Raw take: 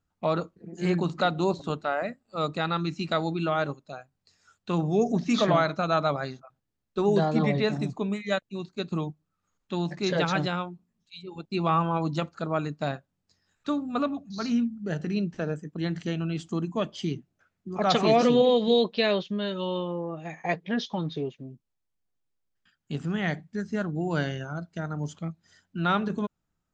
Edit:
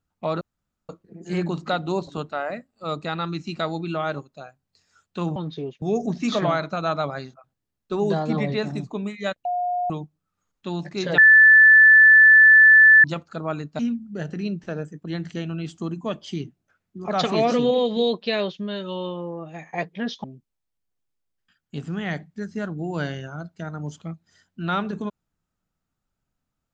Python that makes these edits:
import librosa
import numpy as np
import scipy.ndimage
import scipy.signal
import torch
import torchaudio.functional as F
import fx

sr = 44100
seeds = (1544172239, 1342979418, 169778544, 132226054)

y = fx.edit(x, sr, fx.insert_room_tone(at_s=0.41, length_s=0.48),
    fx.bleep(start_s=8.51, length_s=0.45, hz=715.0, db=-21.5),
    fx.bleep(start_s=10.24, length_s=1.86, hz=1750.0, db=-8.0),
    fx.cut(start_s=12.85, length_s=1.65),
    fx.move(start_s=20.95, length_s=0.46, to_s=4.88), tone=tone)